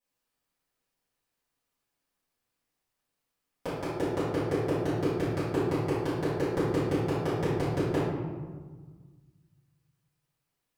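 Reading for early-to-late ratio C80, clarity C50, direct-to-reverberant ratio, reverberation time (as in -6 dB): 2.0 dB, -1.5 dB, -15.5 dB, 1.5 s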